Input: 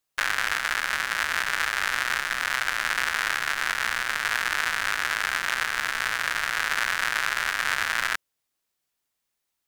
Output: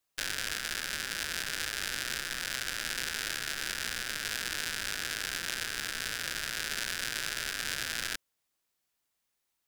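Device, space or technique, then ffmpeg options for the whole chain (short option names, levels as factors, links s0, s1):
one-band saturation: -filter_complex "[0:a]acrossover=split=540|3000[s0][s1][s2];[s1]asoftclip=type=tanh:threshold=0.0168[s3];[s0][s3][s2]amix=inputs=3:normalize=0,volume=0.891"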